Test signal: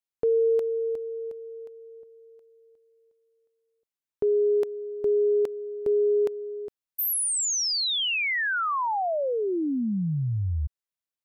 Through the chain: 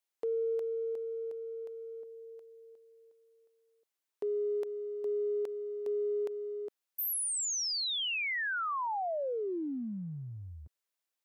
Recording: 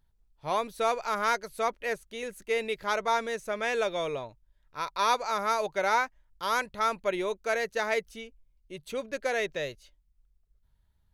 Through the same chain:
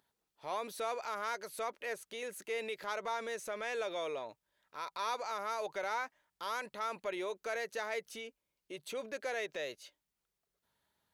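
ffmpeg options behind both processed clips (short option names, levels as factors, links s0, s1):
-af "highpass=320,acompressor=threshold=0.00501:ratio=2:attack=0.16:release=36:knee=1:detection=rms,volume=1.58"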